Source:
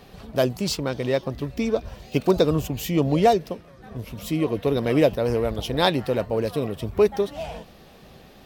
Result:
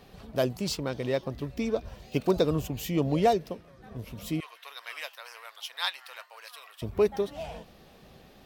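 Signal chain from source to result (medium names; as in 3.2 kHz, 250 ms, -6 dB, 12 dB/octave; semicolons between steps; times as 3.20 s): 4.40–6.82 s: high-pass 1.1 kHz 24 dB/octave; trim -5.5 dB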